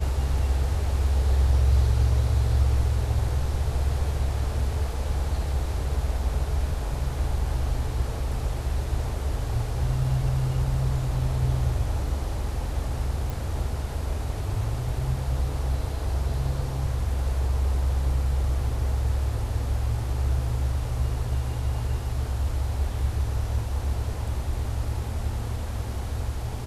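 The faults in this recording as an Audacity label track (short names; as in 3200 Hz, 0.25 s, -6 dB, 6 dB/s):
13.300000	13.300000	pop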